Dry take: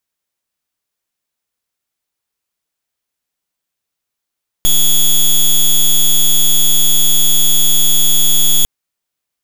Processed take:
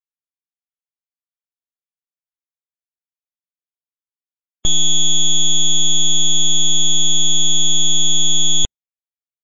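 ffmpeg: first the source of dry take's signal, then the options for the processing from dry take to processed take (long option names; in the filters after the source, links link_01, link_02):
-f lavfi -i "aevalsrc='0.355*(2*lt(mod(3380*t,1),0.1)-1)':duration=4:sample_rate=44100"
-af "afftdn=noise_reduction=26:noise_floor=-30,asuperstop=centerf=5100:order=8:qfactor=2,aresample=16000,aresample=44100"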